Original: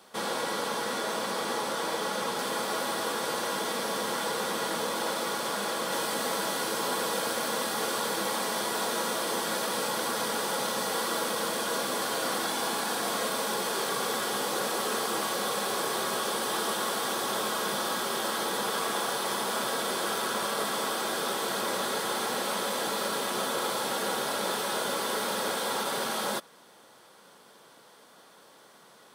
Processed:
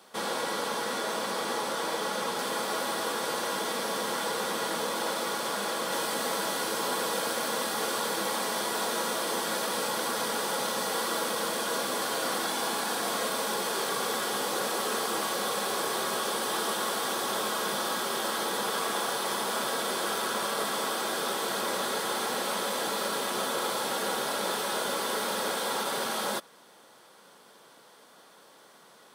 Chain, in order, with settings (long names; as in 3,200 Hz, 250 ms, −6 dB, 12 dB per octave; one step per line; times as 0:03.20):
low-shelf EQ 72 Hz −10.5 dB